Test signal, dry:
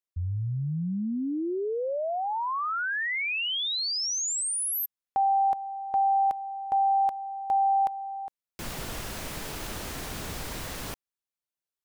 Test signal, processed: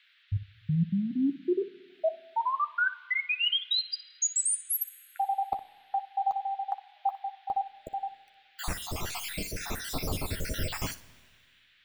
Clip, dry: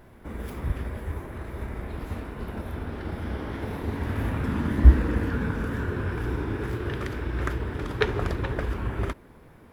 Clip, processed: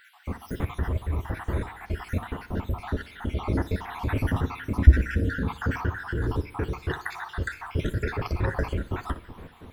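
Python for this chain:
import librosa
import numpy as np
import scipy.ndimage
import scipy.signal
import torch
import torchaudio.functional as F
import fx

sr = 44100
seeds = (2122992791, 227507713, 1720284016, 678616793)

p1 = fx.spec_dropout(x, sr, seeds[0], share_pct=66)
p2 = fx.low_shelf(p1, sr, hz=100.0, db=4.5)
p3 = fx.over_compress(p2, sr, threshold_db=-32.0, ratio=-1.0)
p4 = p2 + (p3 * 10.0 ** (0.0 / 20.0))
p5 = p4 * (1.0 - 0.3 / 2.0 + 0.3 / 2.0 * np.cos(2.0 * np.pi * 1.4 * (np.arange(len(p4)) / sr)))
p6 = p5 + fx.room_early_taps(p5, sr, ms=(11, 61), db=(-9.5, -16.0), dry=0)
p7 = fx.dmg_noise_band(p6, sr, seeds[1], low_hz=1500.0, high_hz=3800.0, level_db=-63.0)
p8 = fx.rev_schroeder(p7, sr, rt60_s=1.7, comb_ms=27, drr_db=19.0)
y = p8 * 10.0 ** (-1.0 / 20.0)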